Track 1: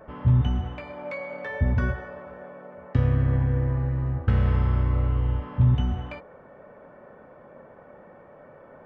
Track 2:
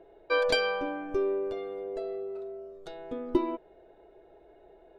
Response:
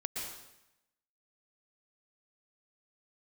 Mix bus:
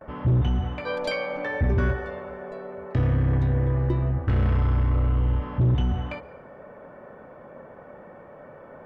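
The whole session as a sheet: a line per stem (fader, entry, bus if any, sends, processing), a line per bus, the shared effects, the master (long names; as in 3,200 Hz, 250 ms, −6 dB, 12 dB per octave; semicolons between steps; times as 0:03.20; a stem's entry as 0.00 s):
+3.0 dB, 0.00 s, send −20 dB, noise gate with hold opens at −42 dBFS; soft clipping −20 dBFS, distortion −12 dB
−5.0 dB, 0.55 s, no send, no processing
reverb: on, RT60 0.85 s, pre-delay 108 ms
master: no processing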